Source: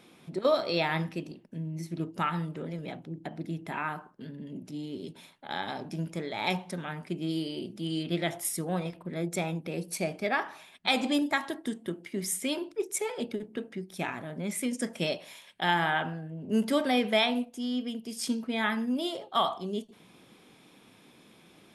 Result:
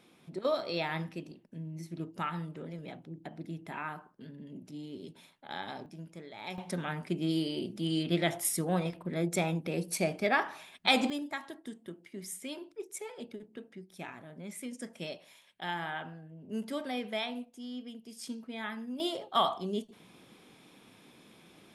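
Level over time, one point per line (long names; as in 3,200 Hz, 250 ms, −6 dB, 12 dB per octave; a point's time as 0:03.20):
−5.5 dB
from 0:05.86 −12 dB
from 0:06.58 +1 dB
from 0:11.10 −10 dB
from 0:19.00 −0.5 dB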